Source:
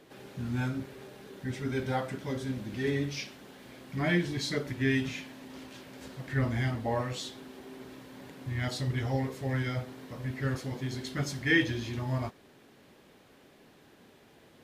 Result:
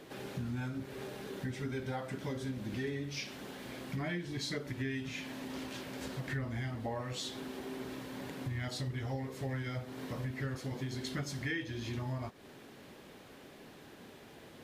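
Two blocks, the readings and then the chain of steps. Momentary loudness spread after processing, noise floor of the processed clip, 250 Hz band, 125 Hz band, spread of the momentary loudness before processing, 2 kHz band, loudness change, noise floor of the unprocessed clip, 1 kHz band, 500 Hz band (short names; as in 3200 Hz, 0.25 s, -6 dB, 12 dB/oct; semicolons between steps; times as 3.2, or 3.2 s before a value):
16 LU, -54 dBFS, -6.0 dB, -6.0 dB, 18 LU, -8.0 dB, -7.0 dB, -59 dBFS, -6.0 dB, -6.0 dB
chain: compressor 6:1, threshold -40 dBFS, peak gain reduction 18.5 dB; gain +4.5 dB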